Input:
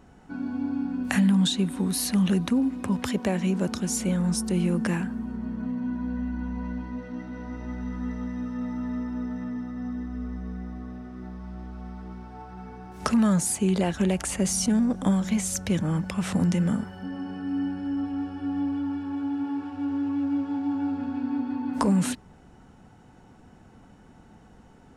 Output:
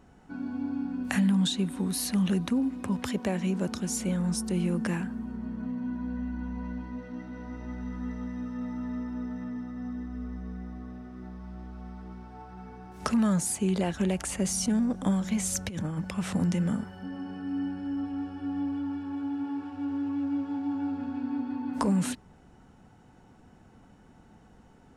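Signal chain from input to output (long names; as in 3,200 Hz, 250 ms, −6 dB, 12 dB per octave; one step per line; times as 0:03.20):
0:15.40–0:15.98: compressor whose output falls as the input rises −27 dBFS, ratio −0.5
level −3.5 dB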